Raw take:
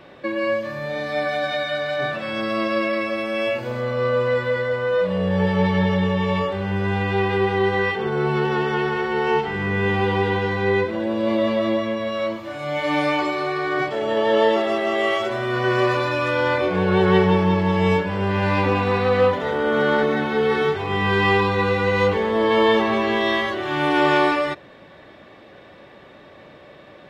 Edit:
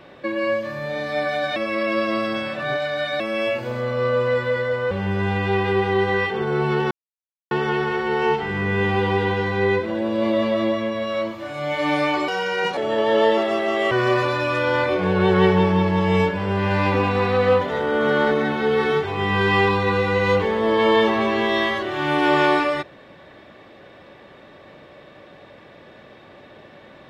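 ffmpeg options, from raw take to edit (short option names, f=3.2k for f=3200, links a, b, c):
-filter_complex "[0:a]asplit=8[a][b][c][d][e][f][g][h];[a]atrim=end=1.562[i];[b]atrim=start=1.558:end=3.202,asetpts=PTS-STARTPTS,areverse[j];[c]atrim=start=3.198:end=4.912[k];[d]atrim=start=6.558:end=8.56,asetpts=PTS-STARTPTS,afade=t=out:st=1.998:d=0.004:c=hsin,apad=pad_dur=0.6[l];[e]atrim=start=8.56:end=13.334,asetpts=PTS-STARTPTS,afade=t=in:d=0.004:c=hsin[m];[f]atrim=start=13.33:end=13.96,asetpts=PTS-STARTPTS,asetrate=56448,aresample=44100,atrim=end_sample=21705,asetpts=PTS-STARTPTS[n];[g]atrim=start=13.956:end=15.102[o];[h]atrim=start=15.628[p];[i][j]acrossfade=d=0.004:c1=hsin:c2=hsin[q];[q][k]acrossfade=d=0.004:c1=hsin:c2=hsin[r];[l][m]concat=n=2:v=0:a=1[s];[r][s]acrossfade=d=0.004:c1=hsin:c2=hsin[t];[t][n]acrossfade=d=0.004:c1=hsin:c2=hsin[u];[u][o]acrossfade=d=0.004:c1=hsin:c2=hsin[v];[v][p]acrossfade=d=0.004:c1=hsin:c2=hsin"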